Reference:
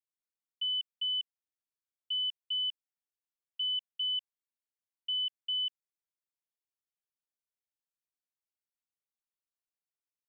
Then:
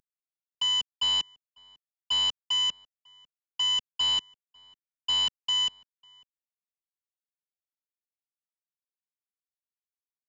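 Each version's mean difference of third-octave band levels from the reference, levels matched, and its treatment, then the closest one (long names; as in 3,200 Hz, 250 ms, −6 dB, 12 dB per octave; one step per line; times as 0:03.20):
12.0 dB: variable-slope delta modulation 32 kbit/s
slap from a distant wall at 94 metres, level −26 dB
level +6 dB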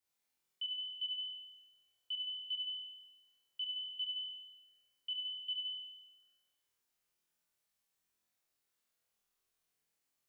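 1.0 dB: brickwall limiter −39.5 dBFS, peak gain reduction 11 dB
flutter between parallel walls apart 4.1 metres, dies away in 1.1 s
level +5 dB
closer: second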